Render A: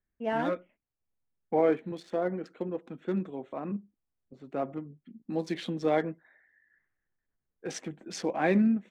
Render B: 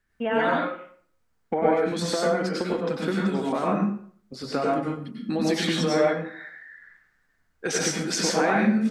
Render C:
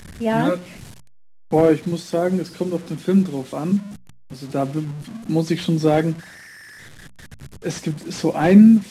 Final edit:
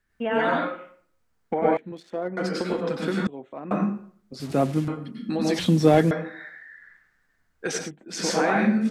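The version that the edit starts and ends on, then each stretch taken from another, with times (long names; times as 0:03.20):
B
0:01.77–0:02.37: punch in from A
0:03.27–0:03.71: punch in from A
0:04.40–0:04.88: punch in from C
0:05.59–0:06.11: punch in from C
0:07.79–0:08.20: punch in from A, crossfade 0.24 s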